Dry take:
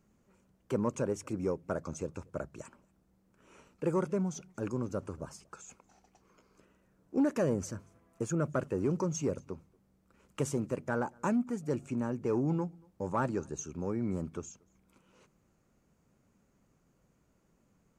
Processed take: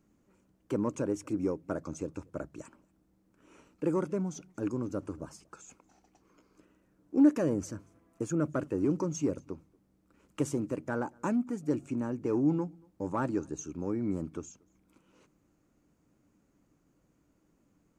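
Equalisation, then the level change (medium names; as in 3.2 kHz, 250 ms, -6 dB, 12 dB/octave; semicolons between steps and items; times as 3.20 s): peaking EQ 300 Hz +12 dB 0.26 oct; -1.5 dB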